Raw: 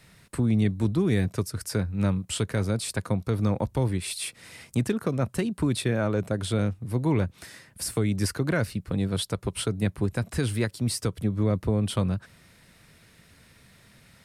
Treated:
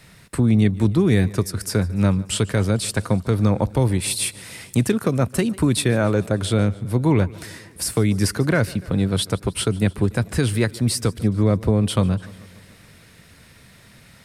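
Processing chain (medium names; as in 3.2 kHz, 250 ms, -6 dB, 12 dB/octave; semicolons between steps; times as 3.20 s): 3.79–6.27 s: treble shelf 6.5 kHz +5.5 dB; modulated delay 146 ms, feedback 63%, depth 58 cents, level -21.5 dB; trim +6.5 dB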